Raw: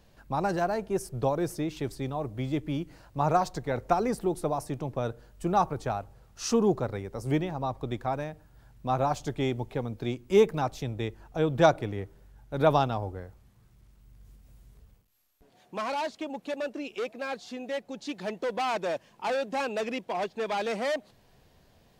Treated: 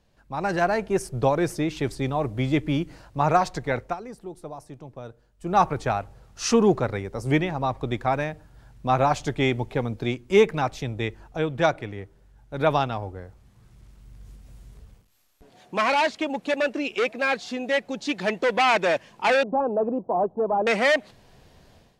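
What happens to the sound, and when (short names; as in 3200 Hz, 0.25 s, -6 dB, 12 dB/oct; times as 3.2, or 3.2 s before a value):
3.73–5.62 dip -16 dB, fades 0.24 s
19.43–20.67 inverse Chebyshev low-pass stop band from 1900 Hz
whole clip: LPF 11000 Hz 12 dB/oct; dynamic EQ 2100 Hz, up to +8 dB, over -48 dBFS, Q 1.2; AGC gain up to 14 dB; gain -6 dB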